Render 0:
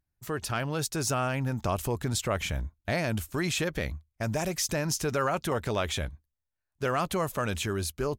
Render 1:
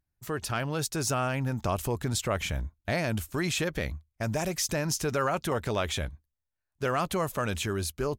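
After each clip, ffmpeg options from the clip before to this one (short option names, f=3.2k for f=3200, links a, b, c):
-af anull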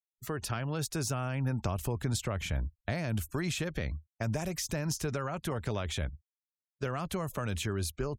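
-filter_complex "[0:a]afftfilt=real='re*gte(hypot(re,im),0.00316)':imag='im*gte(hypot(re,im),0.00316)':win_size=1024:overlap=0.75,acrossover=split=190[a][b];[b]acompressor=threshold=-33dB:ratio=6[c];[a][c]amix=inputs=2:normalize=0"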